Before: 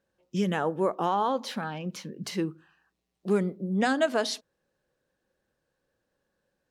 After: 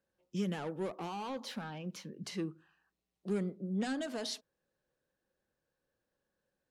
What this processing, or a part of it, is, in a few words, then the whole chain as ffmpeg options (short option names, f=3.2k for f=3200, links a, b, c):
one-band saturation: -filter_complex "[0:a]acrossover=split=360|2800[a][b][c];[b]asoftclip=type=tanh:threshold=-33dB[d];[a][d][c]amix=inputs=3:normalize=0,asettb=1/sr,asplit=3[e][f][g];[e]atrim=end=2.184[h];[f]atrim=start=2.18:end=3.98,asetpts=PTS-STARTPTS,afade=t=in:d=0.004:c=qsin,afade=t=out:st=1.796:d=0.004:c=qsin,lowpass=11k[i];[g]atrim=start=3.976[j];[h][i]acrossfade=d=0.004:c1=hsin:c2=qsin[k];[k][j]acrossfade=d=0.004:c1=qsin:c2=hsin,volume=-7dB"